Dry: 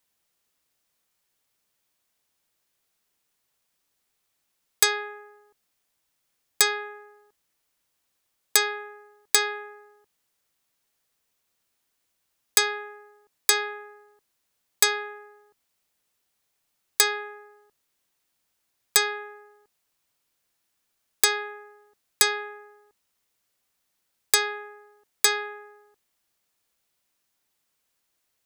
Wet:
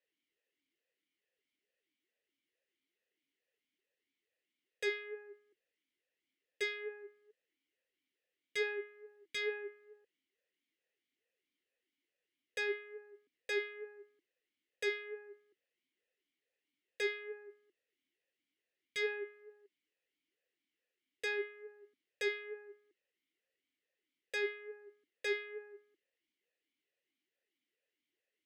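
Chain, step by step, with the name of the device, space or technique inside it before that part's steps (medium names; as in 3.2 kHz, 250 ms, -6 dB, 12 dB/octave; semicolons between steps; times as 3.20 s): talk box (valve stage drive 22 dB, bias 0.25; talking filter e-i 2.3 Hz); trim +5 dB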